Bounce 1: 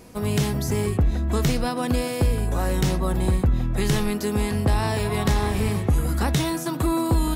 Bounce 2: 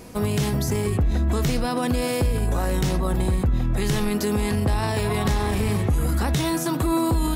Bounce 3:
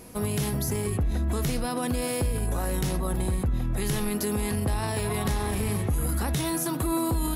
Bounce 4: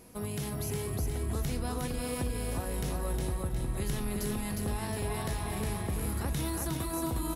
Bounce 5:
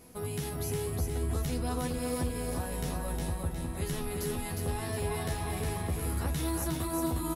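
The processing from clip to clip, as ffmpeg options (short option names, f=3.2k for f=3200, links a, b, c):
-af "alimiter=limit=-19.5dB:level=0:latency=1:release=32,volume=4.5dB"
-af "equalizer=f=11k:w=2.7:g=11.5,volume=-5dB"
-af "aecho=1:1:360|720|1080|1440|1800:0.708|0.297|0.125|0.0525|0.022,volume=-8dB"
-filter_complex "[0:a]asplit=2[a][b];[b]adelay=12,volume=-3dB[c];[a][c]amix=inputs=2:normalize=0,volume=-1.5dB"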